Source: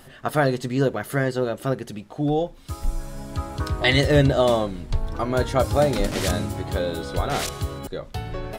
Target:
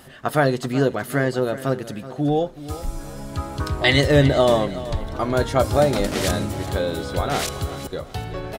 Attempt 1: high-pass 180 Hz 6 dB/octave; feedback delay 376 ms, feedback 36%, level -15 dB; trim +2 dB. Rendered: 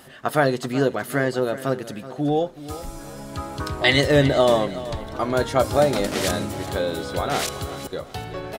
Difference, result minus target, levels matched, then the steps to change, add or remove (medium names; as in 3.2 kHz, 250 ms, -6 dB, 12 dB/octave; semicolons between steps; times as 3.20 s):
125 Hz band -3.5 dB
change: high-pass 54 Hz 6 dB/octave